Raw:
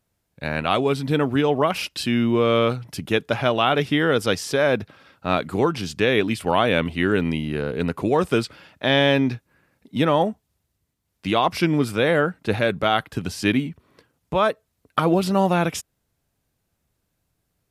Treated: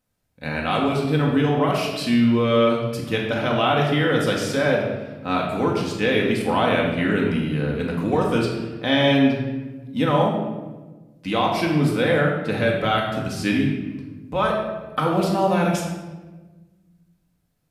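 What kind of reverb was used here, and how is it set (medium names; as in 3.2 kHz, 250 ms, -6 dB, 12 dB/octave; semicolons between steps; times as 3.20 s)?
simulated room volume 820 m³, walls mixed, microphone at 2 m; trim -4.5 dB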